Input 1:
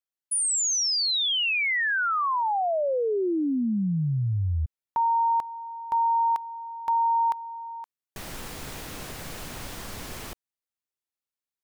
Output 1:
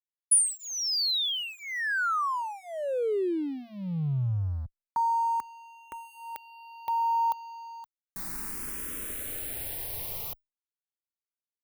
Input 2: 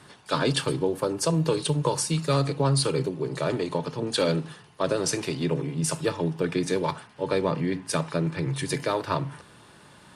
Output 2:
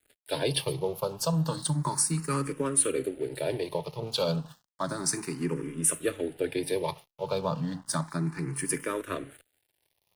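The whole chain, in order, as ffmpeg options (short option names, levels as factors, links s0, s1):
-filter_complex "[0:a]aexciter=amount=4.1:drive=6.7:freq=9200,aeval=exprs='sgn(val(0))*max(abs(val(0))-0.00631,0)':c=same,asplit=2[s0][s1];[s1]afreqshift=0.32[s2];[s0][s2]amix=inputs=2:normalize=1,volume=0.891"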